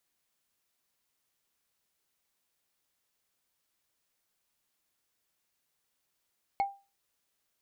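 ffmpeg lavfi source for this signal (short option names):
-f lavfi -i "aevalsrc='0.0794*pow(10,-3*t/0.3)*sin(2*PI*794*t)+0.0224*pow(10,-3*t/0.089)*sin(2*PI*2189.1*t)+0.00631*pow(10,-3*t/0.04)*sin(2*PI*4290.8*t)+0.00178*pow(10,-3*t/0.022)*sin(2*PI*7092.8*t)+0.000501*pow(10,-3*t/0.013)*sin(2*PI*10592*t)':d=0.45:s=44100"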